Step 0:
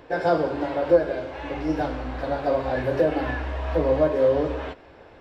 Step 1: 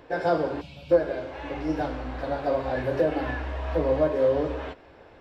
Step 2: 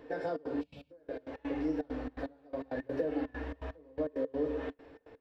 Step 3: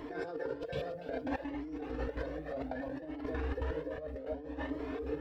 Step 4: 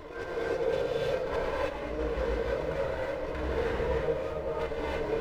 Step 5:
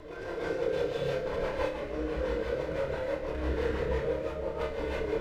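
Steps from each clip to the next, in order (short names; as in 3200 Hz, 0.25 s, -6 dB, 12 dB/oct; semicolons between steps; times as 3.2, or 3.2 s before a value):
spectral gain 0.61–0.91, 240–2200 Hz -23 dB; gain -2.5 dB
compressor 3:1, threshold -30 dBFS, peak gain reduction 12 dB; step gate "xxxx.xx.x...x.x." 166 bpm -24 dB; small resonant body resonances 280/450/1800 Hz, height 13 dB, ringing for 70 ms; gain -7.5 dB
split-band echo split 350 Hz, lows 0.703 s, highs 0.289 s, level -13 dB; negative-ratio compressor -42 dBFS, ratio -1; cascading flanger rising 0.63 Hz; gain +9 dB
minimum comb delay 2 ms; non-linear reverb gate 0.35 s rising, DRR -6.5 dB; gain +1.5 dB
rotary speaker horn 6 Hz; flutter echo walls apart 5 m, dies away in 0.32 s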